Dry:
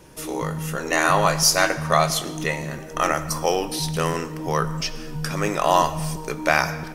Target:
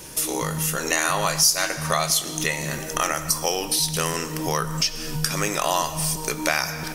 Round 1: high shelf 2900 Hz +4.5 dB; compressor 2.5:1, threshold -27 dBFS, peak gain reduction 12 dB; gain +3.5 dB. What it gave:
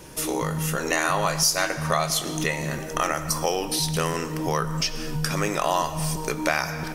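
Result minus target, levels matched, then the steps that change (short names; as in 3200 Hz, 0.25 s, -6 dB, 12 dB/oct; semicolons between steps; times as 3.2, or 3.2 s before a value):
8000 Hz band -3.0 dB
change: high shelf 2900 Hz +14.5 dB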